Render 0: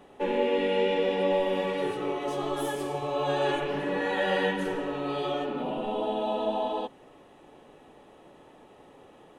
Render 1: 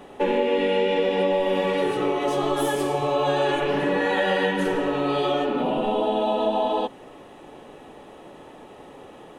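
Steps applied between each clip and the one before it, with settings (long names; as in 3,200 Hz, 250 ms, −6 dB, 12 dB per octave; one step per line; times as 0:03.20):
mains-hum notches 50/100/150 Hz
downward compressor 4 to 1, threshold −28 dBFS, peak gain reduction 6.5 dB
level +9 dB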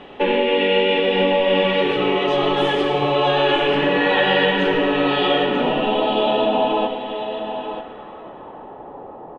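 low-pass filter sweep 3,100 Hz → 860 Hz, 0:06.34–0:08.83
single-tap delay 940 ms −9 dB
on a send at −10 dB: convolution reverb RT60 3.5 s, pre-delay 58 ms
on the sum: level +3 dB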